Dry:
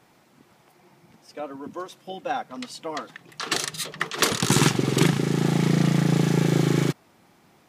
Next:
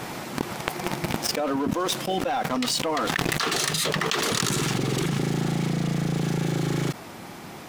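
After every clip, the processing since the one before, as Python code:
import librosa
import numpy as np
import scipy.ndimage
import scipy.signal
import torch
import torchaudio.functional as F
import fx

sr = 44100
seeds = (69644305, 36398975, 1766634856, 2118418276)

y = fx.rider(x, sr, range_db=5, speed_s=0.5)
y = fx.leveller(y, sr, passes=3)
y = fx.env_flatten(y, sr, amount_pct=100)
y = y * librosa.db_to_amplitude(-15.0)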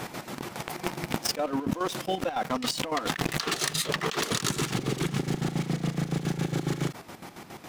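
y = fx.chopper(x, sr, hz=7.2, depth_pct=65, duty_pct=50)
y = y * librosa.db_to_amplitude(-1.5)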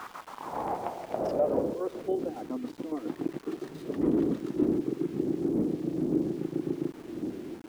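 y = fx.dmg_wind(x, sr, seeds[0], corner_hz=300.0, level_db=-28.0)
y = fx.filter_sweep_bandpass(y, sr, from_hz=1200.0, to_hz=320.0, start_s=0.06, end_s=2.47, q=4.1)
y = np.where(np.abs(y) >= 10.0 ** (-51.5 / 20.0), y, 0.0)
y = y * librosa.db_to_amplitude(5.0)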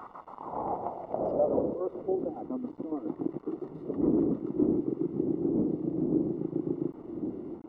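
y = scipy.signal.savgol_filter(x, 65, 4, mode='constant')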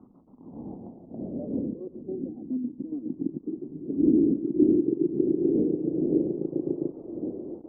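y = fx.filter_sweep_lowpass(x, sr, from_hz=240.0, to_hz=540.0, start_s=3.09, end_s=6.75, q=2.5)
y = y + 10.0 ** (-20.5 / 20.0) * np.pad(y, (int(113 * sr / 1000.0), 0))[:len(y)]
y = y * librosa.db_to_amplitude(-1.0)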